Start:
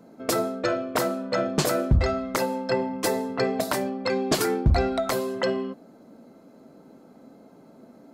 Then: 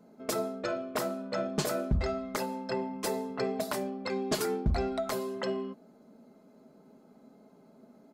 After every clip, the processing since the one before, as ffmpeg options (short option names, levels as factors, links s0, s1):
-af "aecho=1:1:4.8:0.41,volume=0.398"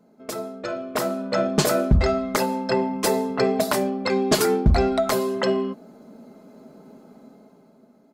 -af "dynaudnorm=f=150:g=13:m=3.55"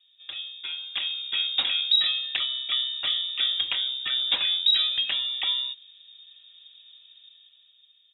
-af "lowpass=f=3300:t=q:w=0.5098,lowpass=f=3300:t=q:w=0.6013,lowpass=f=3300:t=q:w=0.9,lowpass=f=3300:t=q:w=2.563,afreqshift=-3900,volume=0.562"